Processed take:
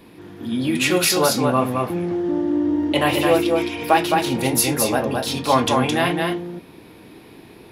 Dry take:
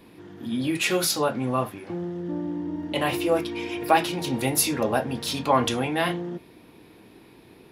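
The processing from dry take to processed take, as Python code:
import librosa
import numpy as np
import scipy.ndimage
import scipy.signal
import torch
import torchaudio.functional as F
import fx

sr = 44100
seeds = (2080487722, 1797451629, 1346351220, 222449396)

y = fx.rider(x, sr, range_db=10, speed_s=2.0)
y = y + 10.0 ** (-3.5 / 20.0) * np.pad(y, (int(215 * sr / 1000.0), 0))[:len(y)]
y = y * librosa.db_to_amplitude(3.5)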